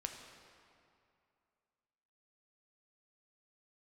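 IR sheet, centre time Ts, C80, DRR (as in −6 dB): 56 ms, 6.0 dB, 3.0 dB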